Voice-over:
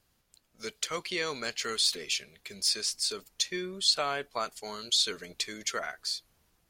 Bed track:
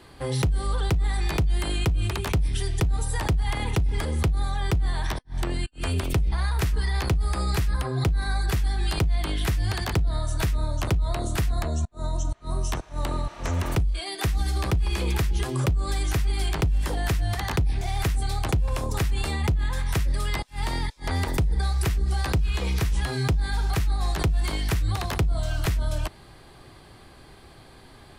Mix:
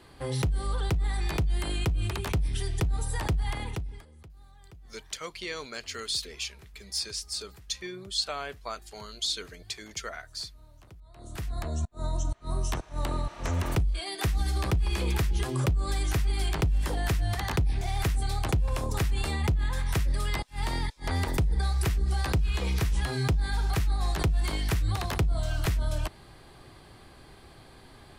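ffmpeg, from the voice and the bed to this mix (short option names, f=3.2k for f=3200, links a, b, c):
-filter_complex "[0:a]adelay=4300,volume=-4dB[a];[1:a]volume=21dB,afade=t=out:st=3.44:d=0.61:silence=0.0668344,afade=t=in:st=11.13:d=0.81:silence=0.0562341[b];[a][b]amix=inputs=2:normalize=0"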